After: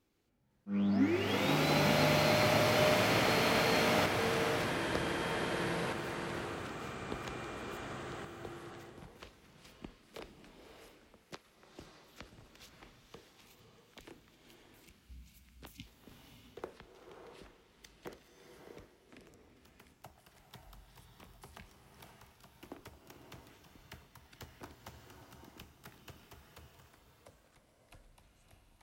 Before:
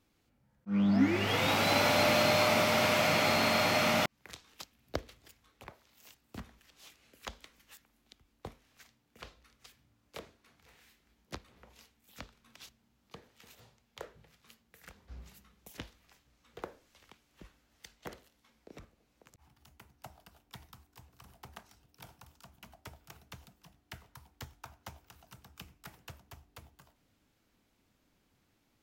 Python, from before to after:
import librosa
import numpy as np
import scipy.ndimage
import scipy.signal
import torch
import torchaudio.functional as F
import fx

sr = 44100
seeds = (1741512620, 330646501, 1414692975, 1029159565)

y = fx.weighting(x, sr, curve='A', at=(11.34, 12.21))
y = fx.spec_erase(y, sr, start_s=13.34, length_s=2.53, low_hz=280.0, high_hz=2100.0)
y = fx.peak_eq(y, sr, hz=390.0, db=6.5, octaves=0.6)
y = fx.echo_pitch(y, sr, ms=509, semitones=-5, count=2, db_per_echo=-6.0)
y = fx.rev_bloom(y, sr, seeds[0], attack_ms=630, drr_db=4.5)
y = y * 10.0 ** (-5.0 / 20.0)